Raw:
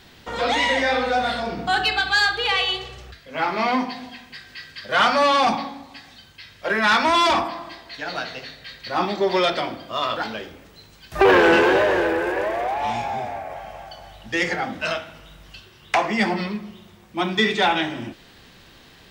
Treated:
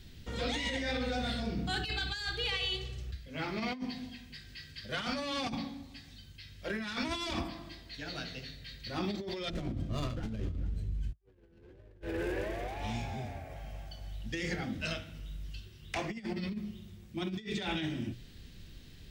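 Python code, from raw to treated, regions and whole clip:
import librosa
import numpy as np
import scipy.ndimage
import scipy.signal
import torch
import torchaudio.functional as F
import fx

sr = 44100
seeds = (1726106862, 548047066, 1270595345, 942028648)

y = fx.chain(x, sr, fx.riaa(side='playback'),
    fx.echo_single(ms=434, db=-21.0),
    fx.running_max(window=5), at=(9.5, 12.02))
y = fx.tone_stack(y, sr, knobs='10-0-1')
y = fx.hum_notches(y, sr, base_hz=60, count=3)
y = fx.over_compress(y, sr, threshold_db=-46.0, ratio=-0.5)
y = F.gain(torch.from_numpy(y), 9.0).numpy()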